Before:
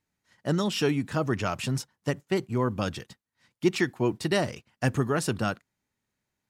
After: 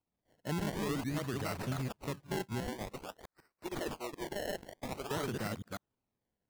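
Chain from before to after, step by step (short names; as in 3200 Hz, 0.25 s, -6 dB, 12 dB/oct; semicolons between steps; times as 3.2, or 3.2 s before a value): reverse delay 0.148 s, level -1 dB; 2.6–5.11 HPF 670 Hz 12 dB/oct; limiter -19.5 dBFS, peak gain reduction 9.5 dB; decimation with a swept rate 25×, swing 100% 0.5 Hz; gain -7.5 dB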